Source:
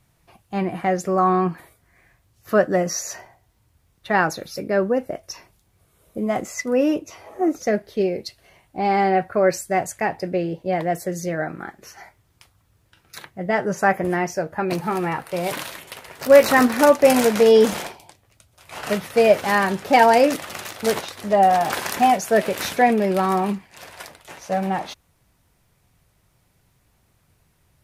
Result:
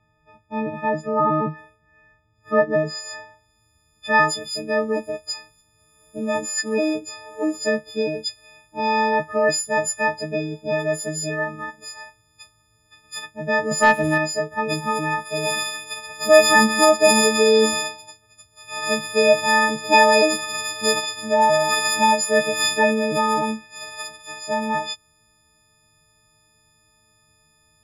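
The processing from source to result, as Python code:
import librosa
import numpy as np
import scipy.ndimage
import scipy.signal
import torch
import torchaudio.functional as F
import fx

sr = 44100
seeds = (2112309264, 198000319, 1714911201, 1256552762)

y = fx.freq_snap(x, sr, grid_st=6)
y = fx.filter_sweep_lowpass(y, sr, from_hz=1800.0, to_hz=7300.0, start_s=2.71, end_s=3.65, q=0.71)
y = fx.leveller(y, sr, passes=1, at=(13.71, 14.18))
y = y * 10.0 ** (-2.5 / 20.0)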